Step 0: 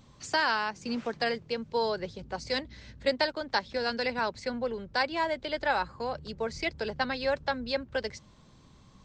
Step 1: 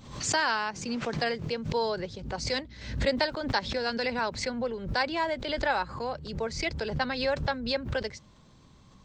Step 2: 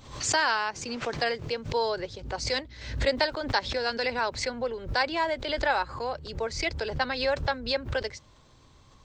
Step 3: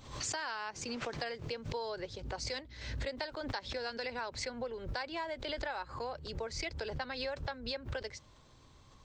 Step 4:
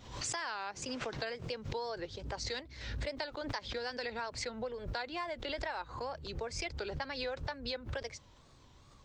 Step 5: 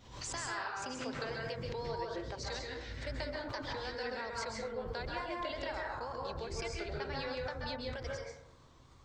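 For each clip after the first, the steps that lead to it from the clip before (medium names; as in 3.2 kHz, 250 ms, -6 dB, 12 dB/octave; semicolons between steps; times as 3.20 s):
swell ahead of each attack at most 78 dB/s
peaking EQ 190 Hz -12 dB 0.72 oct; trim +2 dB
compression, threshold -32 dBFS, peak gain reduction 12 dB; trim -3.5 dB
wow and flutter 130 cents
plate-style reverb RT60 0.83 s, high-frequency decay 0.35×, pre-delay 120 ms, DRR -2.5 dB; trim -4.5 dB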